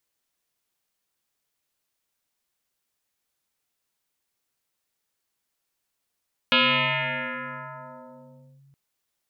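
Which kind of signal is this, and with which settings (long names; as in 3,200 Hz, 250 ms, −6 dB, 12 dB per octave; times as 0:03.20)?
two-operator FM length 2.22 s, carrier 138 Hz, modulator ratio 2.79, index 8.9, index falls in 2.09 s linear, decay 3.40 s, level −15 dB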